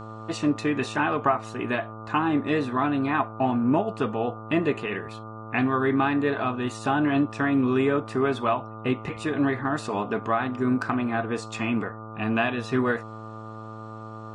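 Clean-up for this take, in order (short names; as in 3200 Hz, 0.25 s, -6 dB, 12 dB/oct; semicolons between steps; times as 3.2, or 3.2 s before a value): de-hum 109.9 Hz, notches 13; notch 1200 Hz, Q 30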